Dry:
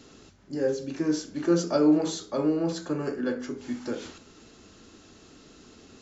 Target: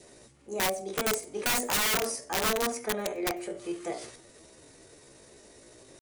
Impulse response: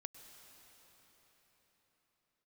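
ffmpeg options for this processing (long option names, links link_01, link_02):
-filter_complex "[0:a]adynamicequalizer=threshold=0.00631:dfrequency=840:dqfactor=3.9:tfrequency=840:tqfactor=3.9:attack=5:release=100:ratio=0.375:range=1.5:mode=boostabove:tftype=bell,asetrate=62367,aresample=44100,atempo=0.707107,aeval=exprs='(mod(10.6*val(0)+1,2)-1)/10.6':channel_layout=same,asplit=2[link_01][link_02];[1:a]atrim=start_sample=2205,atrim=end_sample=4410,highshelf=frequency=5400:gain=11[link_03];[link_02][link_03]afir=irnorm=-1:irlink=0,volume=2.5dB[link_04];[link_01][link_04]amix=inputs=2:normalize=0,volume=-7dB"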